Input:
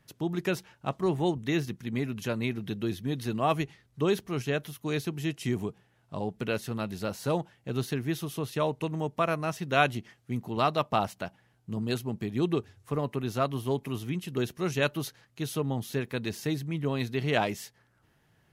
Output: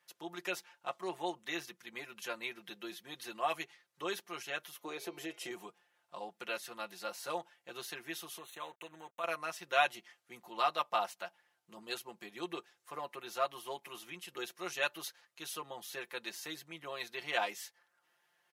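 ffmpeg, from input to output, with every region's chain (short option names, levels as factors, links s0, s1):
-filter_complex "[0:a]asettb=1/sr,asplit=3[s0][s1][s2];[s0]atrim=end=4.754[s3];[s1]atrim=start=4.75:end=5.51,asetpts=PTS-STARTPTS,afade=t=in:d=0.004:c=qsin,afade=t=out:st=0.756:d=0.004:c=qsin,equalizer=f=470:t=o:w=1.7:g=14.5,bandreject=f=207.9:t=h:w=4,bandreject=f=415.8:t=h:w=4,bandreject=f=623.7:t=h:w=4,bandreject=f=831.6:t=h:w=4,bandreject=f=1039.5:t=h:w=4,bandreject=f=1247.4:t=h:w=4,bandreject=f=1455.3:t=h:w=4,bandreject=f=1663.2:t=h:w=4,bandreject=f=1871.1:t=h:w=4,bandreject=f=2079:t=h:w=4,bandreject=f=2286.9:t=h:w=4,bandreject=f=2494.8:t=h:w=4,bandreject=f=2702.7:t=h:w=4,bandreject=f=2910.6:t=h:w=4,bandreject=f=3118.5:t=h:w=4,bandreject=f=3326.4:t=h:w=4,bandreject=f=3534.3:t=h:w=4,bandreject=f=3742.2:t=h:w=4,bandreject=f=3950.1:t=h:w=4,bandreject=f=4158:t=h:w=4,bandreject=f=4365.9:t=h:w=4,bandreject=f=4573.8:t=h:w=4,bandreject=f=4781.7:t=h:w=4,bandreject=f=4989.6:t=h:w=4,bandreject=f=5197.5:t=h:w=4,bandreject=f=5405.4:t=h:w=4,bandreject=f=5613.3:t=h:w=4,bandreject=f=5821.2:t=h:w=4,bandreject=f=6029.1:t=h:w=4,bandreject=f=6237:t=h:w=4,acompressor=threshold=0.0631:ratio=4:attack=3.2:release=140:knee=1:detection=peak[s4];[s2]atrim=start=5.506[s5];[s3][s4]acrossfade=d=0.004:c1=hsin:c2=qsin[s6];[s6][s5]acrossfade=d=0.004:c1=qsin:c2=hsin,asettb=1/sr,asplit=3[s7][s8][s9];[s7]atrim=end=8.384[s10];[s8]atrim=start=8.38:end=9.24,asetpts=PTS-STARTPTS,afade=t=in:d=0.004:c=qsin,afade=t=out:st=0.856:d=0.004:c=qsin,acompressor=threshold=0.02:ratio=2:attack=3.2:release=140:knee=1:detection=peak,aeval=exprs='sgn(val(0))*max(abs(val(0))-0.00316,0)':c=same,asuperstop=centerf=5000:order=20:qfactor=3[s11];[s9]atrim=start=9.236[s12];[s10][s11]acrossfade=d=0.004:c1=hsin:c2=qsin[s13];[s13][s12]acrossfade=d=0.004:c1=qsin:c2=hsin,highpass=710,aecho=1:1:5.7:0.81,volume=0.531"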